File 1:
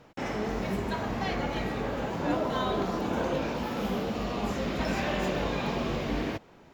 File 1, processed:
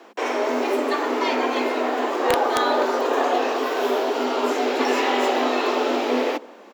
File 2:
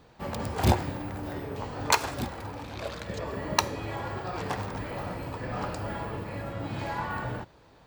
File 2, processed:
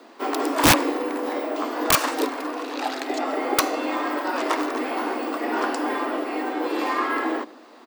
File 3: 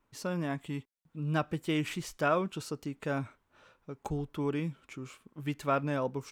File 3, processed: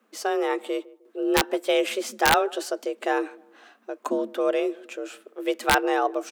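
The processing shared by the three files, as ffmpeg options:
ffmpeg -i in.wav -filter_complex "[0:a]afreqshift=200,asplit=2[link_01][link_02];[link_02]adelay=154,lowpass=frequency=890:poles=1,volume=-20dB,asplit=2[link_03][link_04];[link_04]adelay=154,lowpass=frequency=890:poles=1,volume=0.37,asplit=2[link_05][link_06];[link_06]adelay=154,lowpass=frequency=890:poles=1,volume=0.37[link_07];[link_01][link_03][link_05][link_07]amix=inputs=4:normalize=0,aeval=exprs='(mod(7.08*val(0)+1,2)-1)/7.08':channel_layout=same,volume=8.5dB" out.wav

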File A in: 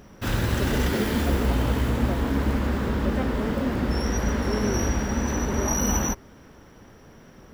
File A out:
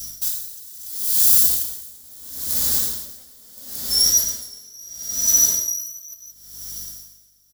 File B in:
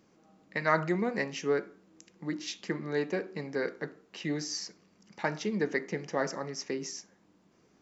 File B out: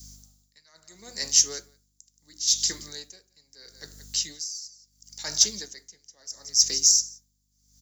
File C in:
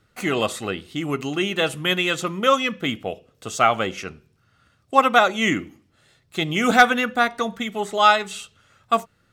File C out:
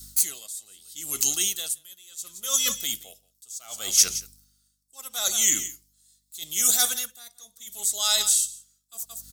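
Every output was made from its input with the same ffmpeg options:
ffmpeg -i in.wav -filter_complex "[0:a]aecho=1:1:175:0.133,aeval=exprs='val(0)+0.0126*(sin(2*PI*50*n/s)+sin(2*PI*2*50*n/s)/2+sin(2*PI*3*50*n/s)/3+sin(2*PI*4*50*n/s)/4+sin(2*PI*5*50*n/s)/5)':channel_layout=same,adynamicequalizer=threshold=0.0141:dfrequency=630:dqfactor=1.9:tfrequency=630:tqfactor=1.9:attack=5:release=100:ratio=0.375:range=2.5:mode=boostabove:tftype=bell,acrossover=split=350|1500[link_01][link_02][link_03];[link_03]acontrast=69[link_04];[link_01][link_02][link_04]amix=inputs=3:normalize=0,crystalizer=i=4:c=0,areverse,acompressor=threshold=-22dB:ratio=5,areverse,aexciter=amount=9.1:drive=6.5:freq=3800,aeval=exprs='val(0)*pow(10,-27*(0.5-0.5*cos(2*PI*0.74*n/s))/20)':channel_layout=same,volume=-9dB" out.wav

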